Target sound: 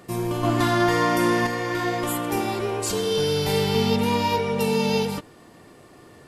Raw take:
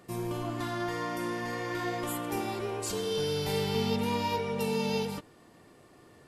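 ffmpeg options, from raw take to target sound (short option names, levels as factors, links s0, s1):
-filter_complex "[0:a]asettb=1/sr,asplit=3[s0][s1][s2];[s0]atrim=end=0.434[s3];[s1]atrim=start=0.43:end=1.47,asetpts=PTS-STARTPTS,afade=t=in:d=0.004:c=qsin,afade=t=out:st=1.036:d=0.004:c=qsin,acontrast=33[s4];[s2]atrim=start=1.466[s5];[s3][s4]acrossfade=d=0.004:c1=hsin:c2=qsin[s6];[s6][s5]acrossfade=d=0.004:c1=qsin:c2=hsin,volume=2.51"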